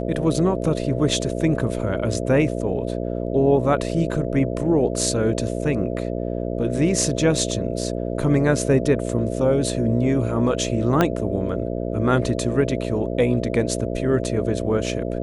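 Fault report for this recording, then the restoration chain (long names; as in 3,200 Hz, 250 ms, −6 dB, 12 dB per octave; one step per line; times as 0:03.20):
mains buzz 60 Hz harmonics 11 −26 dBFS
0:11.01: click −5 dBFS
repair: click removal
hum removal 60 Hz, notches 11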